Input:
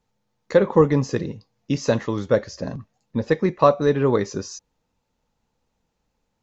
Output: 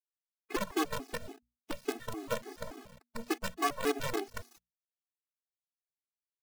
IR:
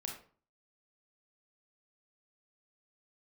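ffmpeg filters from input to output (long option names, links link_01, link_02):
-filter_complex "[0:a]acrossover=split=3600[link_01][link_02];[link_02]acompressor=threshold=-52dB:ratio=4:attack=1:release=60[link_03];[link_01][link_03]amix=inputs=2:normalize=0,aeval=exprs='(tanh(2.24*val(0)+0.65)-tanh(0.65))/2.24':channel_layout=same,highpass=frequency=160:width=0.5412,highpass=frequency=160:width=1.3066,highshelf=frequency=4400:gain=-5,aecho=1:1:2.8:0.96,asettb=1/sr,asplit=3[link_04][link_05][link_06];[link_04]atrim=end=2.034[link_07];[link_05]atrim=start=2.03:end=4.22,asetpts=PTS-STARTPTS,afade=type=in:duration=0.004:curve=qsin,afade=type=out:start_time=2.186:duration=0.004:curve=qsin,asplit=5[link_08][link_09][link_10][link_11][link_12];[link_09]adelay=148,afreqshift=-50,volume=-11.5dB[link_13];[link_10]adelay=296,afreqshift=-100,volume=-20.1dB[link_14];[link_11]adelay=444,afreqshift=-150,volume=-28.8dB[link_15];[link_12]adelay=592,afreqshift=-200,volume=-37.4dB[link_16];[link_08][link_13][link_14][link_15][link_16]amix=inputs=5:normalize=0,atrim=end_sample=96579[link_17];[link_06]atrim=start=4.216[link_18];[link_07][link_17]acrossfade=duration=0.004:curve1=hsin:curve2=qsin[link_19];[link_19][link_18]acrossfade=duration=0.004:curve1=qsin:curve2=hsin,acompressor=threshold=-34dB:ratio=2,acrusher=bits=5:dc=4:mix=0:aa=0.000001,bandreject=frequency=60:width_type=h:width=6,bandreject=frequency=120:width_type=h:width=6,bandreject=frequency=180:width_type=h:width=6,bandreject=frequency=240:width_type=h:width=6,afftfilt=real='re*gt(sin(2*PI*3.5*pts/sr)*(1-2*mod(floor(b*sr/1024/220),2)),0)':imag='im*gt(sin(2*PI*3.5*pts/sr)*(1-2*mod(floor(b*sr/1024/220),2)),0)':win_size=1024:overlap=0.75"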